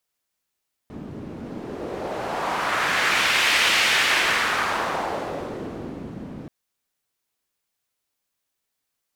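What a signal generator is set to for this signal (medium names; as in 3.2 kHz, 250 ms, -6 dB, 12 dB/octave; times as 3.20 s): wind-like swept noise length 5.58 s, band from 210 Hz, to 2.5 kHz, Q 1.4, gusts 1, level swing 17 dB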